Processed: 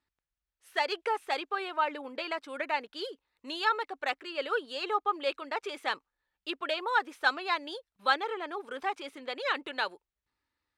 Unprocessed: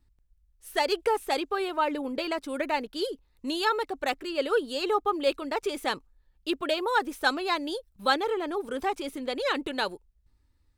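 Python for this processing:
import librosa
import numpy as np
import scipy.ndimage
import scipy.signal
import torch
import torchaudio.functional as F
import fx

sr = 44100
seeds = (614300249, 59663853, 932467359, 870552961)

y = fx.bandpass_q(x, sr, hz=1700.0, q=0.65)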